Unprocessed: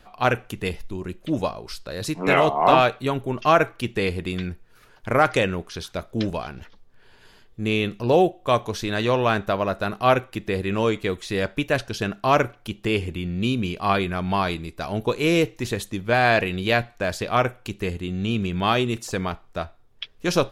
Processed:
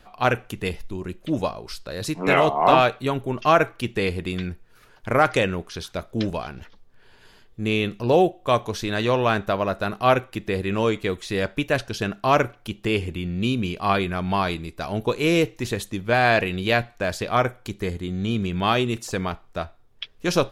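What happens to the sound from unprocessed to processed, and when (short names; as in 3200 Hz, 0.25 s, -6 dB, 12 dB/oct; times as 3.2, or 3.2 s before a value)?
17.32–18.46 notch 2700 Hz, Q 6.4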